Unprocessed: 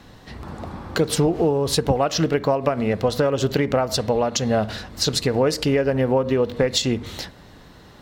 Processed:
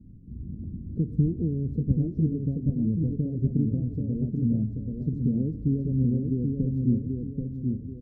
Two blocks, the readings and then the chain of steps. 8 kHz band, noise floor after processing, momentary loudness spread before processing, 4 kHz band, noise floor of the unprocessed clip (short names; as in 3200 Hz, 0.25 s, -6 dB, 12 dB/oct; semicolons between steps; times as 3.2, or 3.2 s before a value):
under -40 dB, -40 dBFS, 13 LU, under -40 dB, -46 dBFS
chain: inverse Chebyshev low-pass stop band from 870 Hz, stop band 60 dB; feedback echo 0.783 s, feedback 39%, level -4 dB